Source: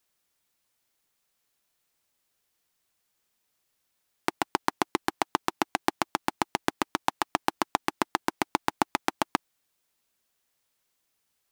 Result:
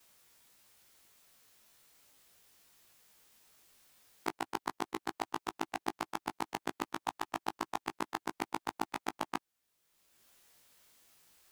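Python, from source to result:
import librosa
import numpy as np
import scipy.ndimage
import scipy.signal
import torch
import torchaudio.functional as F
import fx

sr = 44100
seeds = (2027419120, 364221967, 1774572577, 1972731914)

y = fx.frame_reverse(x, sr, frame_ms=37.0)
y = fx.band_squash(y, sr, depth_pct=70)
y = y * 10.0 ** (-6.5 / 20.0)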